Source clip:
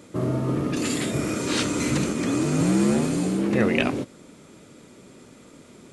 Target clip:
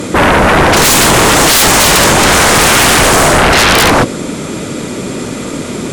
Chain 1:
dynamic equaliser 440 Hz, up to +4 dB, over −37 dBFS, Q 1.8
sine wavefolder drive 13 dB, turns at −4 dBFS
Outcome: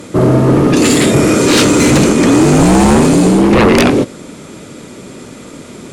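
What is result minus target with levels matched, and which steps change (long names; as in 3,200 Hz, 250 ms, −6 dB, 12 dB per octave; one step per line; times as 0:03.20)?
sine wavefolder: distortion −38 dB
change: sine wavefolder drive 25 dB, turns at −4 dBFS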